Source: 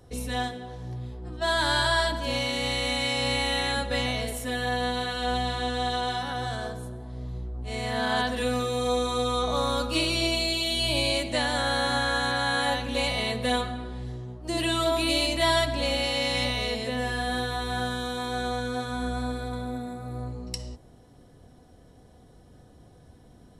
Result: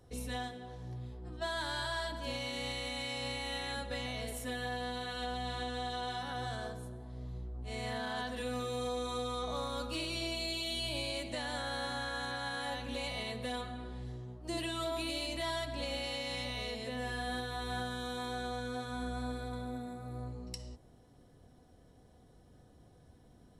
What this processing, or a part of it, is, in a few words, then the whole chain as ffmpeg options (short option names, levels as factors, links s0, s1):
soft clipper into limiter: -af "asoftclip=type=tanh:threshold=0.211,alimiter=limit=0.0944:level=0:latency=1:release=297,volume=0.422"